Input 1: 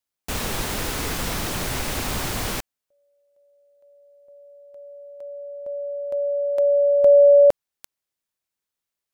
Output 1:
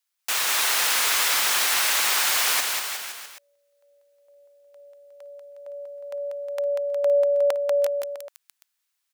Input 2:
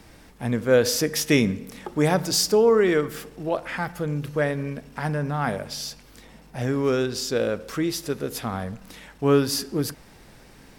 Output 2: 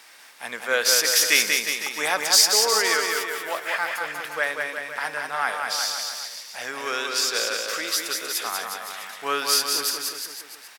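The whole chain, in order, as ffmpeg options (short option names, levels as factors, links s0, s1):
-filter_complex "[0:a]highpass=1200,asplit=2[s0][s1];[s1]aecho=0:1:190|361|514.9|653.4|778.1:0.631|0.398|0.251|0.158|0.1[s2];[s0][s2]amix=inputs=2:normalize=0,volume=2.11"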